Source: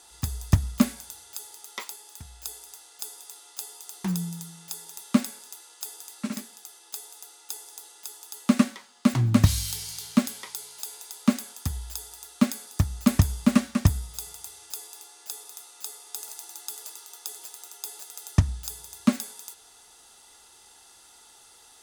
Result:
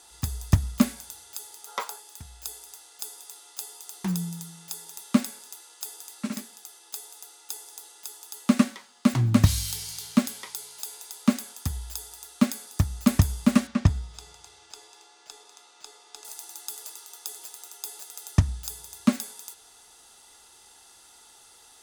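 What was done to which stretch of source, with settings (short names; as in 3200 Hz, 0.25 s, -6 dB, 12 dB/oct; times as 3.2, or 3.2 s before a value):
1.67–1.99 spectral gain 410–1700 Hz +10 dB
13.67–16.25 air absorption 100 m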